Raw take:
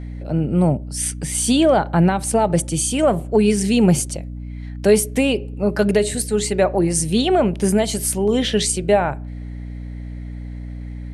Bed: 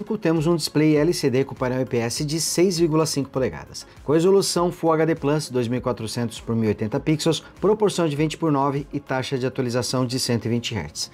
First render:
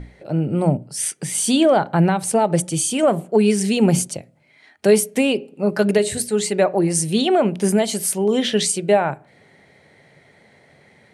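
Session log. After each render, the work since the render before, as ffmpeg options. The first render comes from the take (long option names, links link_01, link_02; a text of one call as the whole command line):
ffmpeg -i in.wav -af "bandreject=frequency=60:width_type=h:width=6,bandreject=frequency=120:width_type=h:width=6,bandreject=frequency=180:width_type=h:width=6,bandreject=frequency=240:width_type=h:width=6,bandreject=frequency=300:width_type=h:width=6" out.wav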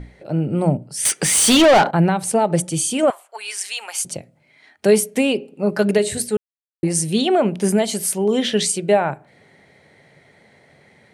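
ffmpeg -i in.wav -filter_complex "[0:a]asettb=1/sr,asplit=3[link_01][link_02][link_03];[link_01]atrim=end=1.054[link_04];[link_02]atrim=start=1.05:end=1.91,asetpts=PTS-STARTPTS,afade=type=in:duration=0.004:curve=qsin,afade=type=out:start_time=0.856:duration=0.004:curve=qsin,asplit=2[link_05][link_06];[link_06]highpass=frequency=720:poles=1,volume=23dB,asoftclip=type=tanh:threshold=-5.5dB[link_07];[link_05][link_07]amix=inputs=2:normalize=0,lowpass=frequency=6900:poles=1,volume=-6dB[link_08];[link_03]atrim=start=1.906[link_09];[link_04][link_08]acrossfade=duration=0.004:curve1=hsin:curve2=qsin[link_10];[link_10][link_09]acrossfade=duration=0.004:curve1=qsin:curve2=hsin,asettb=1/sr,asplit=3[link_11][link_12][link_13];[link_11]atrim=end=3.104[link_14];[link_12]atrim=start=3.1:end=4.05,asetpts=PTS-STARTPTS,afade=type=in:duration=0.004:curve=qsin,afade=type=out:start_time=0.946:duration=0.004:curve=qsin,highpass=frequency=950:width=0.5412,highpass=frequency=950:width=1.3066[link_15];[link_13]atrim=start=4.046[link_16];[link_14][link_15]acrossfade=duration=0.004:curve1=hsin:curve2=qsin[link_17];[link_17][link_16]acrossfade=duration=0.004:curve1=qsin:curve2=hsin,asplit=3[link_18][link_19][link_20];[link_18]atrim=end=6.37,asetpts=PTS-STARTPTS,afade=type=out:start_time=6.366:duration=0.004:curve=hsin[link_21];[link_19]atrim=start=6.37:end=6.83,asetpts=PTS-STARTPTS,volume=0[link_22];[link_20]atrim=start=6.83,asetpts=PTS-STARTPTS,afade=type=in:duration=0.004:curve=hsin[link_23];[link_21][link_22][link_23]concat=n=3:v=0:a=1" out.wav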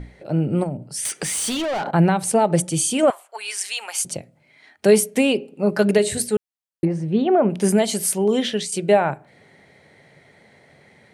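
ffmpeg -i in.wav -filter_complex "[0:a]asettb=1/sr,asplit=3[link_01][link_02][link_03];[link_01]atrim=end=0.634[link_04];[link_02]atrim=start=0.63:end=1.88,asetpts=PTS-STARTPTS,afade=type=in:duration=0.004:curve=qsin,afade=type=out:start_time=1.246:duration=0.004:curve=qsin,acompressor=threshold=-23dB:ratio=6:attack=3.2:release=140:knee=1:detection=peak[link_05];[link_03]atrim=start=1.876[link_06];[link_04][link_05]acrossfade=duration=0.004:curve1=hsin:curve2=qsin[link_07];[link_07][link_06]acrossfade=duration=0.004:curve1=qsin:curve2=hsin,asettb=1/sr,asplit=3[link_08][link_09][link_10];[link_08]atrim=end=6.854[link_11];[link_09]atrim=start=6.85:end=7.5,asetpts=PTS-STARTPTS,afade=type=in:duration=0.004:curve=qsin,afade=type=out:start_time=0.646:duration=0.004:curve=qsin,lowpass=1400[link_12];[link_10]atrim=start=7.496[link_13];[link_11][link_12]acrossfade=duration=0.004:curve1=hsin:curve2=qsin[link_14];[link_14][link_13]acrossfade=duration=0.004:curve1=qsin:curve2=hsin,asplit=2[link_15][link_16];[link_15]atrim=end=8.72,asetpts=PTS-STARTPTS,afade=type=out:start_time=8.15:duration=0.57:curve=qsin:silence=0.251189[link_17];[link_16]atrim=start=8.72,asetpts=PTS-STARTPTS,afade=type=in:duration=0.004:curve=hsin:silence=0.251189[link_18];[link_17][link_18]concat=n=2:v=0:a=1" out.wav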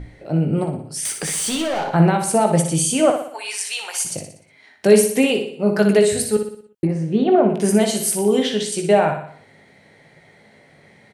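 ffmpeg -i in.wav -filter_complex "[0:a]asplit=2[link_01][link_02];[link_02]adelay=19,volume=-9dB[link_03];[link_01][link_03]amix=inputs=2:normalize=0,aecho=1:1:60|120|180|240|300|360:0.447|0.219|0.107|0.0526|0.0258|0.0126" out.wav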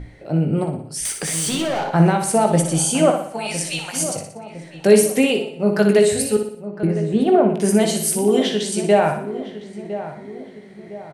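ffmpeg -i in.wav -filter_complex "[0:a]asplit=2[link_01][link_02];[link_02]adelay=1008,lowpass=frequency=1300:poles=1,volume=-12dB,asplit=2[link_03][link_04];[link_04]adelay=1008,lowpass=frequency=1300:poles=1,volume=0.47,asplit=2[link_05][link_06];[link_06]adelay=1008,lowpass=frequency=1300:poles=1,volume=0.47,asplit=2[link_07][link_08];[link_08]adelay=1008,lowpass=frequency=1300:poles=1,volume=0.47,asplit=2[link_09][link_10];[link_10]adelay=1008,lowpass=frequency=1300:poles=1,volume=0.47[link_11];[link_01][link_03][link_05][link_07][link_09][link_11]amix=inputs=6:normalize=0" out.wav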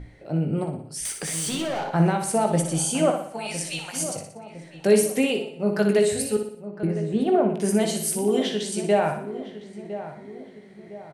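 ffmpeg -i in.wav -af "volume=-5.5dB" out.wav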